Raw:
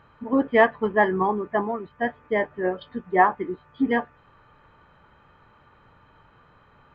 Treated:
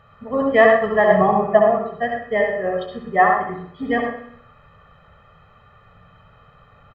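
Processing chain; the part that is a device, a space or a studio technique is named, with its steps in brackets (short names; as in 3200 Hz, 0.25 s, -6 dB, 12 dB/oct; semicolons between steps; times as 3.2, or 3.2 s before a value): microphone above a desk (comb 1.6 ms, depth 77%; reverb RT60 0.45 s, pre-delay 64 ms, DRR 2 dB); 1.1–1.79 fifteen-band EQ 160 Hz +9 dB, 630 Hz +8 dB, 2500 Hz +5 dB; feedback echo 63 ms, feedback 56%, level -12 dB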